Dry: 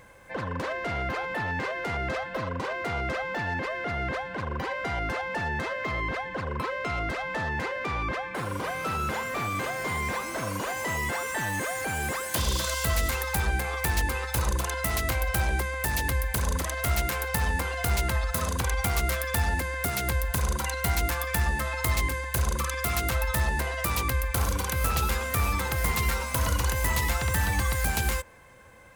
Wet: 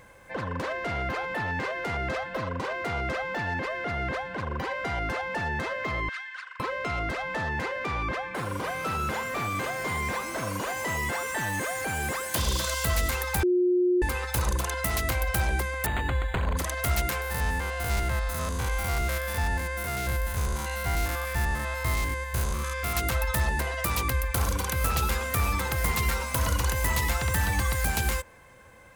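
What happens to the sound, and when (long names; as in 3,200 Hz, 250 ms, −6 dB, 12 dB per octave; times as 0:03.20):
0:06.09–0:06.60: elliptic band-pass filter 1,400–9,600 Hz, stop band 70 dB
0:13.43–0:14.02: beep over 359 Hz −19.5 dBFS
0:15.86–0:16.57: linearly interpolated sample-rate reduction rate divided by 8×
0:17.21–0:22.96: spectrum averaged block by block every 100 ms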